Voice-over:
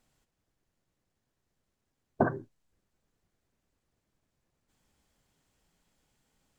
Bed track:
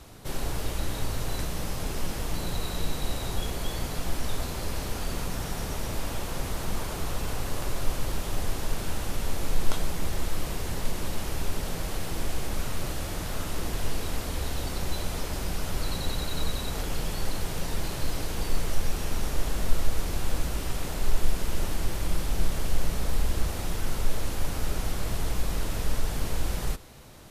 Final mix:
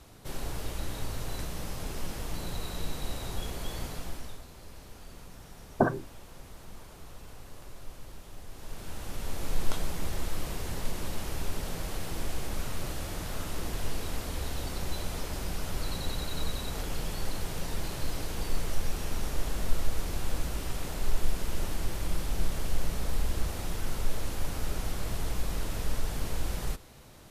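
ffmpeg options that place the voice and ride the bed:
ffmpeg -i stem1.wav -i stem2.wav -filter_complex "[0:a]adelay=3600,volume=2dB[link_01];[1:a]volume=8dB,afade=type=out:start_time=3.84:duration=0.58:silence=0.266073,afade=type=in:start_time=8.49:duration=1.1:silence=0.223872[link_02];[link_01][link_02]amix=inputs=2:normalize=0" out.wav

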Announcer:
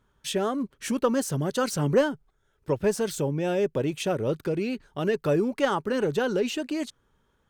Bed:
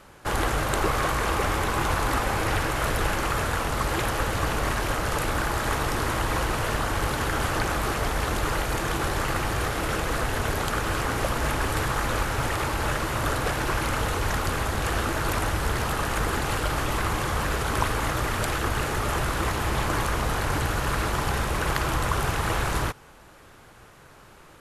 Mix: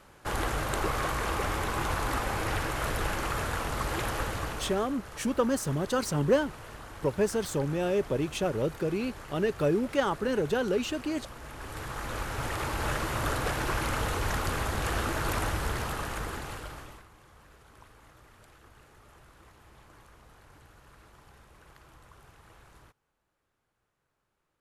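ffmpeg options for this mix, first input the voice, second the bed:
ffmpeg -i stem1.wav -i stem2.wav -filter_complex "[0:a]adelay=4350,volume=-2.5dB[link_01];[1:a]volume=9dB,afade=type=out:start_time=4.2:duration=0.69:silence=0.223872,afade=type=in:start_time=11.49:duration=1.44:silence=0.188365,afade=type=out:start_time=15.44:duration=1.62:silence=0.0501187[link_02];[link_01][link_02]amix=inputs=2:normalize=0" out.wav

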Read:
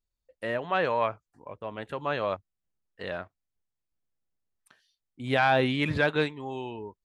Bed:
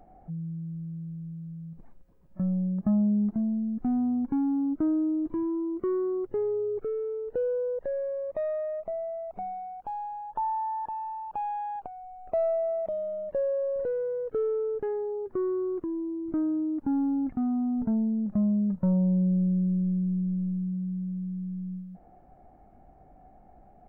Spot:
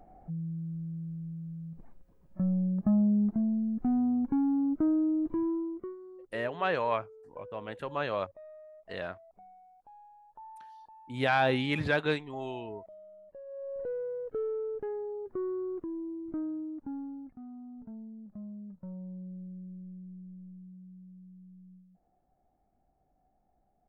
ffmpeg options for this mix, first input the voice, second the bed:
ffmpeg -i stem1.wav -i stem2.wav -filter_complex "[0:a]adelay=5900,volume=-3dB[link_01];[1:a]volume=13dB,afade=type=out:start_time=5.49:duration=0.47:silence=0.11885,afade=type=in:start_time=13.45:duration=0.46:silence=0.199526,afade=type=out:start_time=16.1:duration=1.23:silence=0.223872[link_02];[link_01][link_02]amix=inputs=2:normalize=0" out.wav

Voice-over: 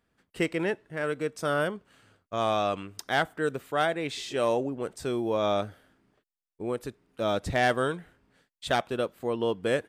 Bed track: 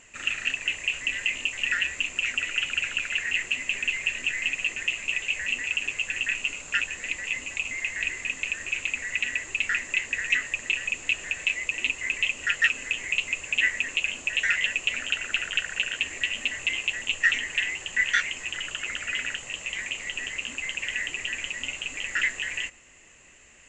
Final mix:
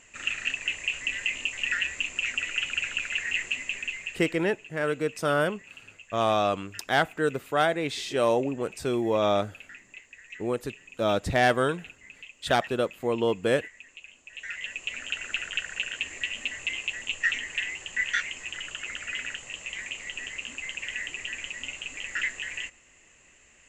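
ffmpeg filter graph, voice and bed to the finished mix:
ffmpeg -i stem1.wav -i stem2.wav -filter_complex "[0:a]adelay=3800,volume=2.5dB[link_01];[1:a]volume=14.5dB,afade=type=out:start_time=3.46:duration=0.98:silence=0.11885,afade=type=in:start_time=14.26:duration=0.98:silence=0.149624[link_02];[link_01][link_02]amix=inputs=2:normalize=0" out.wav

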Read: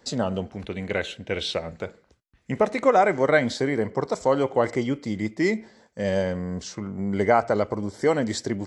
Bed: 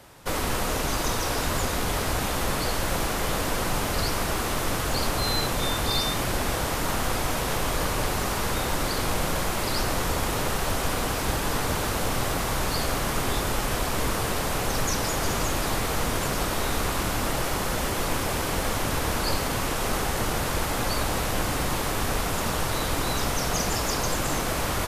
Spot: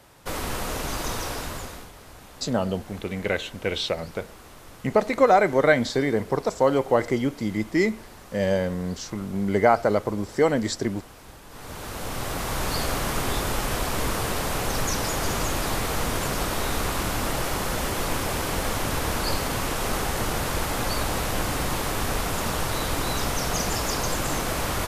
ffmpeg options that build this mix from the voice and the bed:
ffmpeg -i stem1.wav -i stem2.wav -filter_complex "[0:a]adelay=2350,volume=1dB[link_01];[1:a]volume=16.5dB,afade=type=out:start_time=1.2:duration=0.71:silence=0.149624,afade=type=in:start_time=11.49:duration=1.25:silence=0.105925[link_02];[link_01][link_02]amix=inputs=2:normalize=0" out.wav

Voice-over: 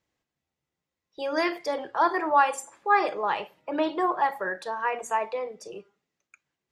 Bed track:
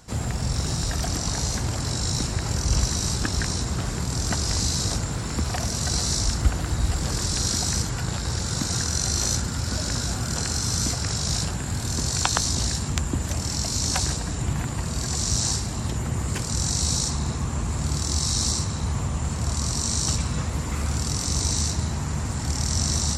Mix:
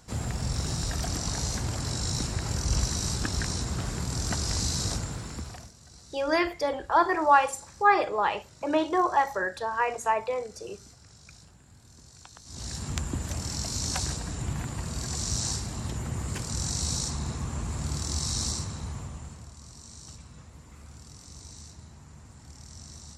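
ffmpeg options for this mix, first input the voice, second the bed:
ffmpeg -i stem1.wav -i stem2.wav -filter_complex "[0:a]adelay=4950,volume=1dB[link_01];[1:a]volume=16.5dB,afade=type=out:start_time=4.9:duration=0.83:silence=0.0749894,afade=type=in:start_time=12.45:duration=0.47:silence=0.0891251,afade=type=out:start_time=18.41:duration=1.1:silence=0.158489[link_02];[link_01][link_02]amix=inputs=2:normalize=0" out.wav

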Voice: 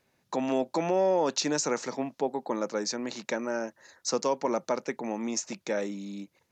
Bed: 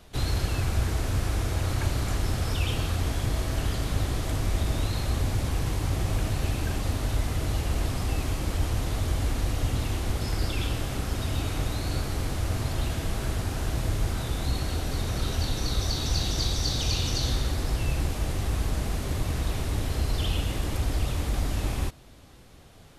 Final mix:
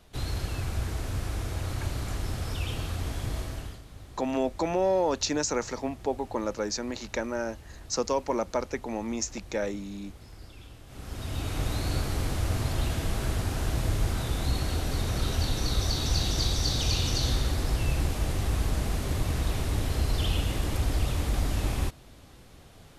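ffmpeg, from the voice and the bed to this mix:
ffmpeg -i stem1.wav -i stem2.wav -filter_complex "[0:a]adelay=3850,volume=0dB[link_01];[1:a]volume=14.5dB,afade=type=out:start_time=3.38:duration=0.44:silence=0.188365,afade=type=in:start_time=10.86:duration=0.89:silence=0.105925[link_02];[link_01][link_02]amix=inputs=2:normalize=0" out.wav

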